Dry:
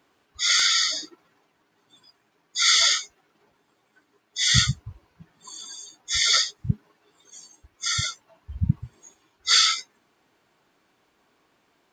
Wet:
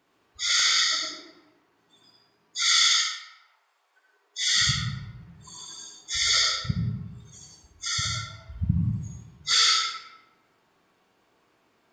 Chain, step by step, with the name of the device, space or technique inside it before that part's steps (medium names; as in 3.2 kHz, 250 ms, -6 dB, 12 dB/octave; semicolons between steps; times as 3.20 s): 2.68–4.60 s: high-pass 1.3 kHz -> 320 Hz 24 dB/octave; bathroom (reverberation RT60 1.0 s, pre-delay 62 ms, DRR -2 dB); trim -4.5 dB